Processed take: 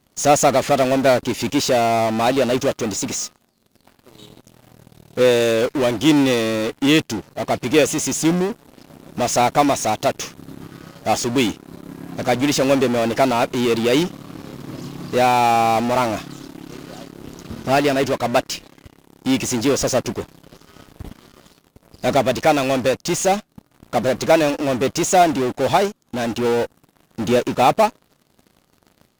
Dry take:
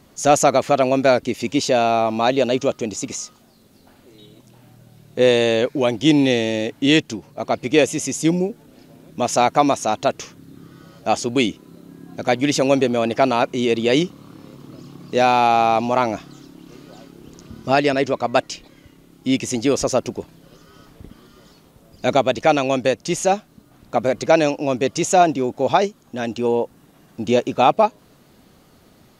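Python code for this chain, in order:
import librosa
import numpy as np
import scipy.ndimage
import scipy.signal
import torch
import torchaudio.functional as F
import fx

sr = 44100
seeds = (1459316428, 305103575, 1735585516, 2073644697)

p1 = fx.fuzz(x, sr, gain_db=39.0, gate_db=-46.0)
p2 = x + (p1 * 10.0 ** (-5.0 / 20.0))
p3 = fx.upward_expand(p2, sr, threshold_db=-29.0, expansion=1.5)
y = p3 * 10.0 ** (-2.0 / 20.0)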